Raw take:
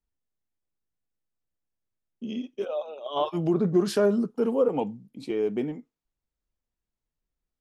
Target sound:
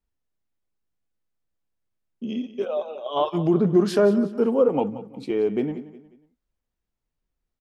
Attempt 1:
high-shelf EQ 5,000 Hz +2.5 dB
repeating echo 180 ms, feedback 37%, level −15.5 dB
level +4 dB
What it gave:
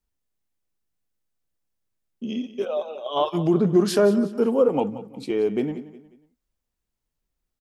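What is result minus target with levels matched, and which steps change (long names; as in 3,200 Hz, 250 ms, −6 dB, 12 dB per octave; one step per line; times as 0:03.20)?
8,000 Hz band +7.0 dB
change: high-shelf EQ 5,000 Hz −7.5 dB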